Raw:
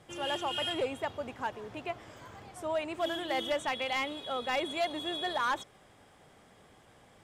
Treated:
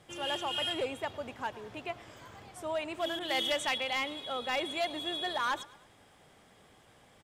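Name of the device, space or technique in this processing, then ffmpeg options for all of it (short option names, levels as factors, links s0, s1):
presence and air boost: -filter_complex "[0:a]equalizer=f=3300:t=o:w=1.6:g=3,highshelf=f=10000:g=5,aecho=1:1:108|216|324:0.0891|0.0428|0.0205,asettb=1/sr,asplit=3[s0][s1][s2];[s0]atrim=end=3.194[s3];[s1]atrim=start=3.19:end=3.78,asetpts=PTS-STARTPTS,afade=t=in:d=0.004:c=qsin,afade=t=out:st=0.586:d=0.004:c=qsin,adynamicequalizer=threshold=0.00708:dfrequency=1900:dqfactor=0.7:tfrequency=1900:tqfactor=0.7:attack=5:release=100:ratio=0.375:range=3:mode=boostabove:tftype=highshelf[s4];[s2]atrim=start=3.776[s5];[s3][s4]acrossfade=d=0.004:c1=hsin:c2=qsin[s6];[s6][s5]acrossfade=d=0.004:c1=qsin:c2=hsin,volume=0.794"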